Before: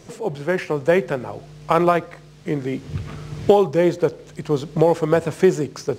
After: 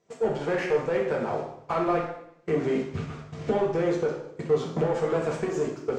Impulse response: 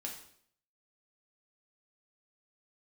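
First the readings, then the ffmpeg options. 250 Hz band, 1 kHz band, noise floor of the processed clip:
−7.5 dB, −7.5 dB, −50 dBFS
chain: -filter_complex "[0:a]lowpass=frequency=7400:width_type=q:width=2.2,acompressor=threshold=-20dB:ratio=6,asplit=2[link_01][link_02];[link_02]highpass=frequency=720:poles=1,volume=19dB,asoftclip=type=tanh:threshold=-11.5dB[link_03];[link_01][link_03]amix=inputs=2:normalize=0,lowpass=frequency=1000:poles=1,volume=-6dB,agate=range=-26dB:threshold=-28dB:ratio=16:detection=peak[link_04];[1:a]atrim=start_sample=2205,asetrate=36603,aresample=44100[link_05];[link_04][link_05]afir=irnorm=-1:irlink=0,volume=-3dB"

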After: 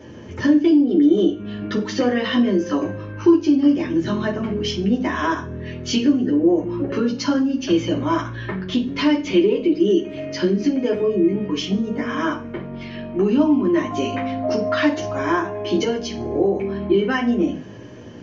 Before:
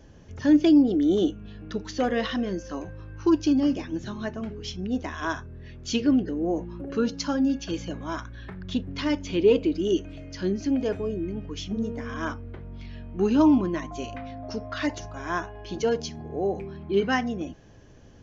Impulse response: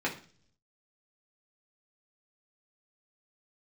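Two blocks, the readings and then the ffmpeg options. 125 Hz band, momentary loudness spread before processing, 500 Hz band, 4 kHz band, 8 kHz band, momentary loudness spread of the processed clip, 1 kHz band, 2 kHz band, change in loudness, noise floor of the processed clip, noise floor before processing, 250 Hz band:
+6.5 dB, 16 LU, +6.5 dB, +7.5 dB, can't be measured, 11 LU, +6.5 dB, +7.0 dB, +6.0 dB, −35 dBFS, −49 dBFS, +6.5 dB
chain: -filter_complex "[0:a]acompressor=threshold=-31dB:ratio=6[link_01];[1:a]atrim=start_sample=2205,asetrate=52920,aresample=44100[link_02];[link_01][link_02]afir=irnorm=-1:irlink=0,volume=7.5dB"

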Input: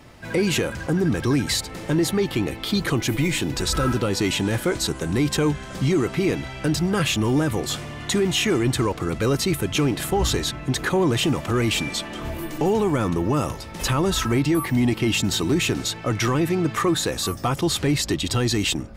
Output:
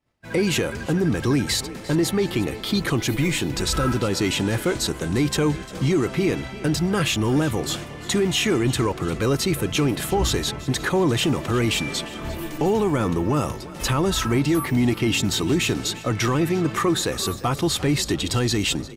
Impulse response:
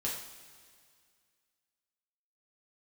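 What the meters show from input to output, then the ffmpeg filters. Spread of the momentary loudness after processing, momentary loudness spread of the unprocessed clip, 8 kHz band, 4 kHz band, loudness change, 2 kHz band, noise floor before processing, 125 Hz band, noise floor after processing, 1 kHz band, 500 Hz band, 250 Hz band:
5 LU, 4 LU, 0.0 dB, 0.0 dB, 0.0 dB, 0.0 dB, −36 dBFS, 0.0 dB, −36 dBFS, 0.0 dB, 0.0 dB, 0.0 dB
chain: -filter_complex "[0:a]agate=range=-33dB:threshold=-30dB:ratio=3:detection=peak,asplit=5[link_01][link_02][link_03][link_04][link_05];[link_02]adelay=349,afreqshift=32,volume=-17.5dB[link_06];[link_03]adelay=698,afreqshift=64,volume=-24.1dB[link_07];[link_04]adelay=1047,afreqshift=96,volume=-30.6dB[link_08];[link_05]adelay=1396,afreqshift=128,volume=-37.2dB[link_09];[link_01][link_06][link_07][link_08][link_09]amix=inputs=5:normalize=0"

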